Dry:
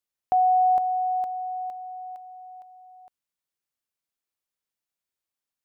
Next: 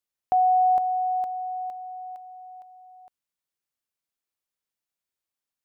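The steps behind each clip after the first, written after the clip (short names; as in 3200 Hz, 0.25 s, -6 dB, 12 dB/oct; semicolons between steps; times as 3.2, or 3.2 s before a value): nothing audible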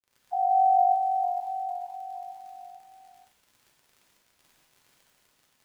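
sine-wave speech; crackle 68/s -39 dBFS; non-linear reverb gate 0.26 s flat, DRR -4.5 dB; gain -7.5 dB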